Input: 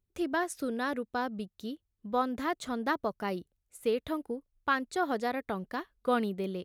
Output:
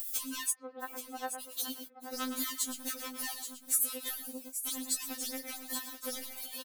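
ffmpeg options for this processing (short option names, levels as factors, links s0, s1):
-filter_complex "[0:a]asoftclip=type=tanh:threshold=0.0266,asplit=2[s0][s1];[s1]aecho=0:1:112:0.251[s2];[s0][s2]amix=inputs=2:normalize=0,acompressor=mode=upward:threshold=0.0141:ratio=2.5,crystalizer=i=5:c=0,acrusher=bits=8:mix=0:aa=0.000001,acompressor=threshold=0.0141:ratio=4,asplit=3[s3][s4][s5];[s3]afade=t=out:st=0.5:d=0.02[s6];[s4]highpass=400,equalizer=f=410:t=q:w=4:g=7,equalizer=f=710:t=q:w=4:g=9,equalizer=f=1200:t=q:w=4:g=6,equalizer=f=2000:t=q:w=4:g=-3,lowpass=f=2100:w=0.5412,lowpass=f=2100:w=1.3066,afade=t=in:st=0.5:d=0.02,afade=t=out:st=1.39:d=0.02[s7];[s5]afade=t=in:st=1.39:d=0.02[s8];[s6][s7][s8]amix=inputs=3:normalize=0,asplit=2[s9][s10];[s10]aecho=0:1:828:0.335[s11];[s9][s11]amix=inputs=2:normalize=0,crystalizer=i=4:c=0,afftfilt=real='re*3.46*eq(mod(b,12),0)':imag='im*3.46*eq(mod(b,12),0)':win_size=2048:overlap=0.75,volume=0.668"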